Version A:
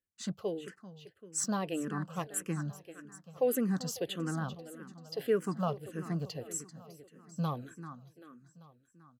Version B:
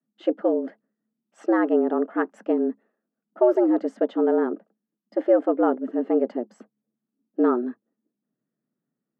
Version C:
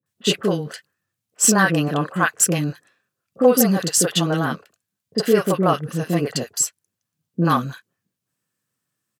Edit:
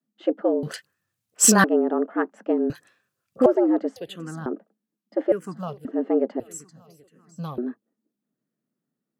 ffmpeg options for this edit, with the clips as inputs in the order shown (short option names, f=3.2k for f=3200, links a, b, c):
-filter_complex "[2:a]asplit=2[a][b];[0:a]asplit=3[c][d][e];[1:a]asplit=6[f][g][h][i][j][k];[f]atrim=end=0.632[l];[a]atrim=start=0.628:end=1.642[m];[g]atrim=start=1.638:end=2.702[n];[b]atrim=start=2.698:end=3.462[o];[h]atrim=start=3.458:end=3.962[p];[c]atrim=start=3.958:end=4.462[q];[i]atrim=start=4.458:end=5.322[r];[d]atrim=start=5.318:end=5.852[s];[j]atrim=start=5.848:end=6.402[t];[e]atrim=start=6.398:end=7.582[u];[k]atrim=start=7.578[v];[l][m]acrossfade=d=0.004:c1=hsin:c2=hsin[w];[w][n]acrossfade=d=0.004:c1=hsin:c2=hsin[x];[x][o]acrossfade=d=0.004:c1=hsin:c2=hsin[y];[y][p]acrossfade=d=0.004:c1=hsin:c2=hsin[z];[z][q]acrossfade=d=0.004:c1=hsin:c2=hsin[aa];[aa][r]acrossfade=d=0.004:c1=hsin:c2=hsin[ab];[ab][s]acrossfade=d=0.004:c1=hsin:c2=hsin[ac];[ac][t]acrossfade=d=0.004:c1=hsin:c2=hsin[ad];[ad][u]acrossfade=d=0.004:c1=hsin:c2=hsin[ae];[ae][v]acrossfade=d=0.004:c1=hsin:c2=hsin"